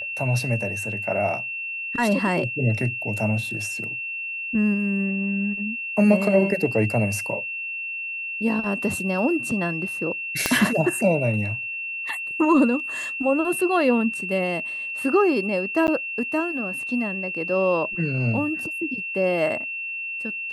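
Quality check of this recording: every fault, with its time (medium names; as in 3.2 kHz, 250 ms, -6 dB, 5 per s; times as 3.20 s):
whine 2.7 kHz -28 dBFS
10.46 s: pop -4 dBFS
15.87–15.88 s: dropout 9.9 ms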